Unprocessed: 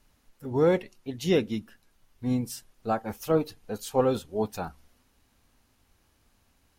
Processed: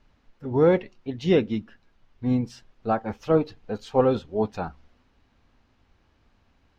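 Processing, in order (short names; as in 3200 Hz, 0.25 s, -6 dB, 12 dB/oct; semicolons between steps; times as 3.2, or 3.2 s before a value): air absorption 190 m; gain +4 dB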